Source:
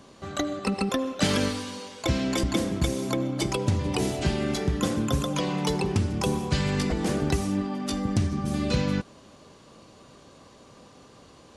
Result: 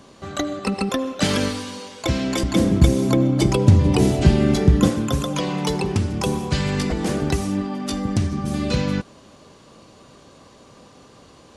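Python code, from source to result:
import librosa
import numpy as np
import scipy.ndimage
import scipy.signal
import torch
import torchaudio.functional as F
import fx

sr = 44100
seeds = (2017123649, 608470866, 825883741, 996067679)

y = fx.low_shelf(x, sr, hz=420.0, db=9.5, at=(2.56, 4.9))
y = F.gain(torch.from_numpy(y), 3.5).numpy()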